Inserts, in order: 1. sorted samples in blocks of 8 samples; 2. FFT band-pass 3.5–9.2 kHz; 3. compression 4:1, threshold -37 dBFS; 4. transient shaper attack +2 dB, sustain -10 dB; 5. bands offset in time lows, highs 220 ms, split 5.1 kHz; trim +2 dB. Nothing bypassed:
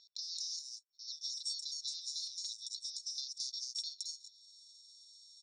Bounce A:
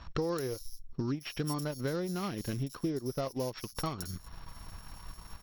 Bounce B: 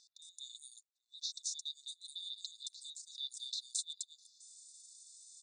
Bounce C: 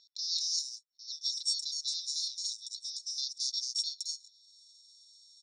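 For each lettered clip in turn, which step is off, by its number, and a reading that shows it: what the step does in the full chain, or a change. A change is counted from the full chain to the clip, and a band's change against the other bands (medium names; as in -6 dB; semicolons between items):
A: 2, crest factor change -2.0 dB; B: 1, distortion -12 dB; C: 3, crest factor change +2.5 dB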